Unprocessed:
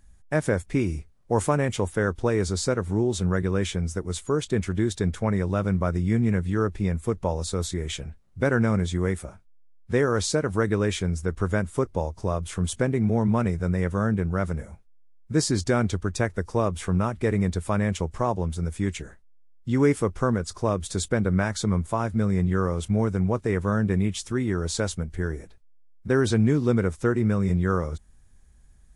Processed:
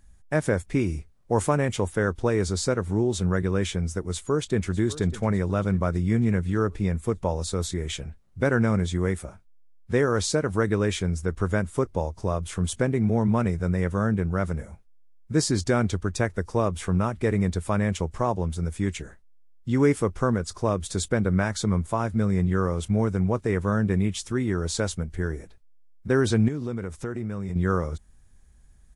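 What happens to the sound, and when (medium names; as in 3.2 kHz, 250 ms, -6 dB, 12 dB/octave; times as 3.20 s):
4.03–4.77 s: echo throw 600 ms, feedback 55%, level -16.5 dB
26.48–27.56 s: compression 5:1, threshold -27 dBFS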